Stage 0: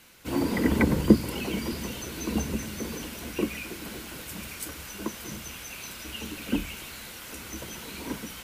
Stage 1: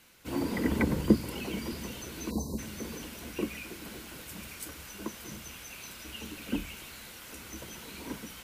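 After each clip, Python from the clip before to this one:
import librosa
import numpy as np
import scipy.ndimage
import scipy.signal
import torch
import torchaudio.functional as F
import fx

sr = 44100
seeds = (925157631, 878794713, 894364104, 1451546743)

y = fx.spec_erase(x, sr, start_s=2.31, length_s=0.27, low_hz=1100.0, high_hz=3800.0)
y = y * 10.0 ** (-5.0 / 20.0)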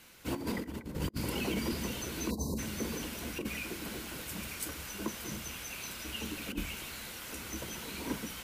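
y = fx.over_compress(x, sr, threshold_db=-34.0, ratio=-0.5)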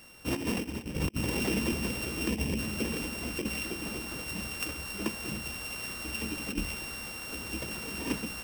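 y = np.r_[np.sort(x[:len(x) // 16 * 16].reshape(-1, 16), axis=1).ravel(), x[len(x) // 16 * 16:]]
y = y * 10.0 ** (4.0 / 20.0)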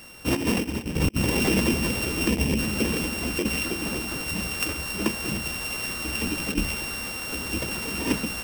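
y = fx.buffer_crackle(x, sr, first_s=0.93, period_s=0.13, block=512, kind='repeat')
y = y * 10.0 ** (7.5 / 20.0)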